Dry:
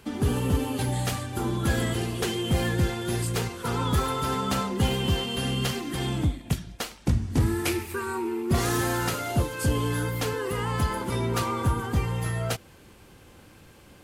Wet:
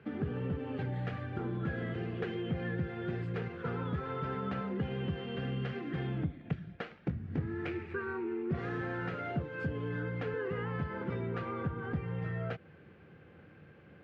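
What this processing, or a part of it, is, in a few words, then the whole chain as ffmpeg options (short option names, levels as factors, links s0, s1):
bass amplifier: -af "acompressor=threshold=0.0398:ratio=5,bass=f=250:g=3,treble=f=4000:g=9,highpass=f=83:w=0.5412,highpass=f=83:w=1.3066,equalizer=f=110:t=q:w=4:g=-4,equalizer=f=160:t=q:w=4:g=6,equalizer=f=250:t=q:w=4:g=-3,equalizer=f=460:t=q:w=4:g=4,equalizer=f=960:t=q:w=4:g=-8,equalizer=f=1600:t=q:w=4:g=4,lowpass=f=2300:w=0.5412,lowpass=f=2300:w=1.3066,volume=0.531"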